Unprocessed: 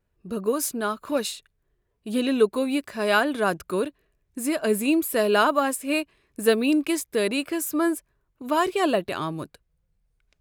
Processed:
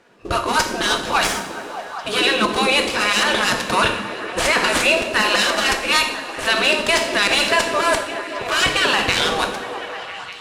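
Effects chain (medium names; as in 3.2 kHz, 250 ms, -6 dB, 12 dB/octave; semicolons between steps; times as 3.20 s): dead-time distortion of 0.063 ms; reverse; compression 10:1, threshold -29 dBFS, peak gain reduction 16 dB; reverse; spectral gate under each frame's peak -15 dB weak; distance through air 72 m; on a send: repeats whose band climbs or falls 199 ms, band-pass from 220 Hz, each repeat 0.7 oct, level -3 dB; on the sum: two-slope reverb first 0.57 s, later 3.8 s, from -18 dB, DRR 4 dB; loudness maximiser +33.5 dB; trim -5 dB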